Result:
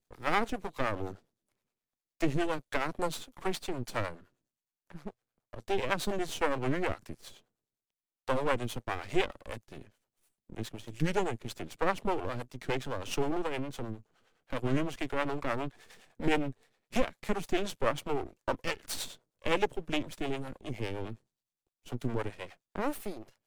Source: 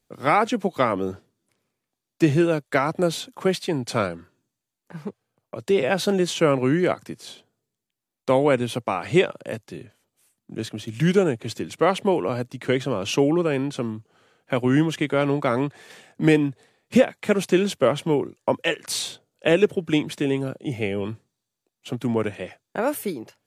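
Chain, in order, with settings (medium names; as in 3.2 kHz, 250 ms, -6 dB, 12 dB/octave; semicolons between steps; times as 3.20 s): half-wave rectifier; harmonic tremolo 9.7 Hz, depth 70%, crossover 430 Hz; trim -3 dB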